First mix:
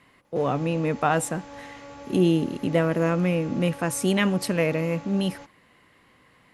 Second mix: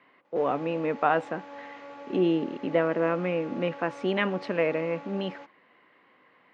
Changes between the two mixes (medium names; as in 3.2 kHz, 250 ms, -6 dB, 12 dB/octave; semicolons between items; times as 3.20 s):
speech: add distance through air 130 m; master: add band-pass 310–3000 Hz